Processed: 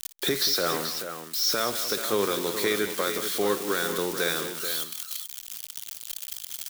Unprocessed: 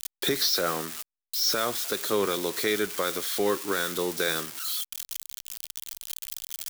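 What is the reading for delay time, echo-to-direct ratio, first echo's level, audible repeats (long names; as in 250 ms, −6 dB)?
58 ms, −7.0 dB, −15.5 dB, 3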